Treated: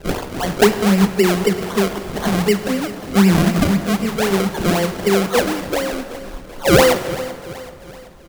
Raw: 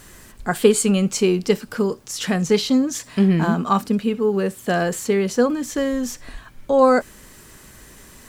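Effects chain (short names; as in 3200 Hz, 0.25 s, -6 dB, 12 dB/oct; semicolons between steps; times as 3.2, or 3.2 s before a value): spectral delay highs early, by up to 0.698 s; decimation with a swept rate 34×, swing 100% 3.9 Hz; feedback echo 0.382 s, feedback 50%, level -16 dB; plate-style reverb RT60 2 s, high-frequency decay 0.7×, DRR 9 dB; gain +3.5 dB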